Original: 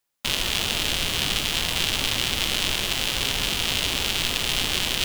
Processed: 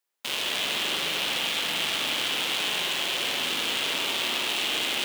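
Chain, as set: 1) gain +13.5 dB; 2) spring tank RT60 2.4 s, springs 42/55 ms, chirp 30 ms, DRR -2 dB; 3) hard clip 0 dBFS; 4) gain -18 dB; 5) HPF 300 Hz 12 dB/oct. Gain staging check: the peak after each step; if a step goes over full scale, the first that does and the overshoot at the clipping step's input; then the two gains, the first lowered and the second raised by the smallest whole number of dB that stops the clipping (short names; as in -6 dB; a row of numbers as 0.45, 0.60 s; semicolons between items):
+8.5, +9.5, 0.0, -18.0, -14.5 dBFS; step 1, 9.5 dB; step 1 +3.5 dB, step 4 -8 dB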